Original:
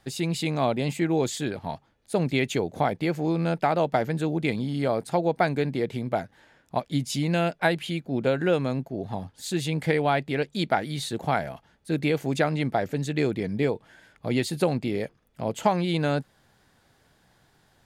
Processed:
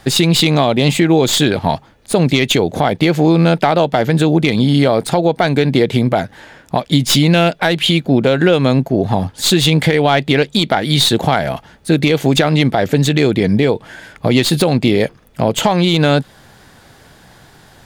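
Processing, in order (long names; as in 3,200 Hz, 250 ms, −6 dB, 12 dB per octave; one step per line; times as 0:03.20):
stylus tracing distortion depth 0.04 ms
dynamic equaliser 3,500 Hz, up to +7 dB, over −50 dBFS, Q 2.3
downward compressor, threshold −26 dBFS, peak gain reduction 10 dB
boost into a limiter +19.5 dB
level −1 dB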